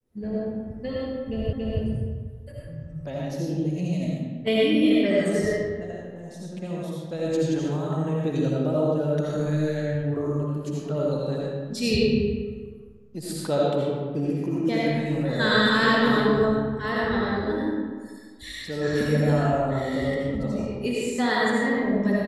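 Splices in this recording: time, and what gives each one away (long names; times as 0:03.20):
0:01.53: the same again, the last 0.28 s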